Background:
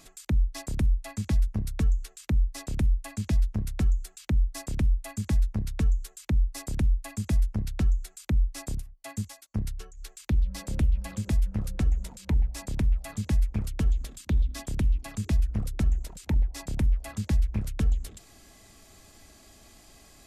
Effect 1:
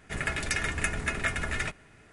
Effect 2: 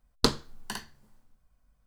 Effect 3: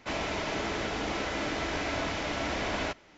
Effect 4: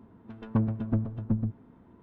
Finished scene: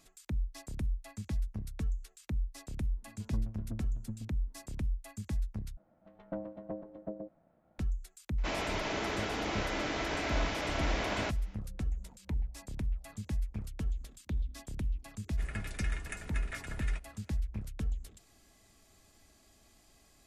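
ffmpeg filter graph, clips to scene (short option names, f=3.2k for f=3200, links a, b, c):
-filter_complex "[4:a]asplit=2[a][b];[0:a]volume=-10dB[c];[a]lowshelf=f=210:g=6[d];[b]aeval=exprs='val(0)*sin(2*PI*420*n/s)':c=same[e];[c]asplit=2[f][g];[f]atrim=end=5.774[h];[e]atrim=end=2.02,asetpts=PTS-STARTPTS,volume=-11dB[i];[g]atrim=start=7.786[j];[d]atrim=end=2.02,asetpts=PTS-STARTPTS,volume=-17.5dB,afade=t=in:d=0.004:c=hsin,afade=t=out:st=2.016:d=0.004:c=hsin,adelay=2780[k];[3:a]atrim=end=3.17,asetpts=PTS-STARTPTS,volume=-2.5dB,afade=t=in:d=0.004:c=hsin,afade=t=out:st=3.166:d=0.004:c=hsin,adelay=8380[l];[1:a]atrim=end=2.12,asetpts=PTS-STARTPTS,volume=-13.5dB,afade=t=in:d=0.004:c=hsin,afade=t=out:st=2.116:d=0.004:c=hsin,adelay=15280[m];[h][i]acrossfade=d=0.004:c1=hsin:c2=hsin[n];[n][j]acrossfade=d=0.004:c1=hsin:c2=hsin[o];[o][k][l][m]amix=inputs=4:normalize=0"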